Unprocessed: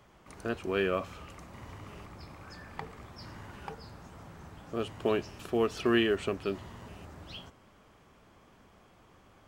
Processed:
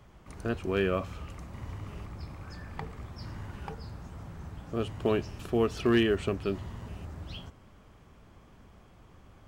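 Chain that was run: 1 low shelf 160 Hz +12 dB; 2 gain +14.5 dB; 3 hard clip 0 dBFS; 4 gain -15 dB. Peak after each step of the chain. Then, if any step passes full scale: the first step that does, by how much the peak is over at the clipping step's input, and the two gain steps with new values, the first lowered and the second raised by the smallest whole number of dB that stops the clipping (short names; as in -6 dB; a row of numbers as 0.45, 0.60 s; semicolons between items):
-10.5, +4.0, 0.0, -15.0 dBFS; step 2, 4.0 dB; step 2 +10.5 dB, step 4 -11 dB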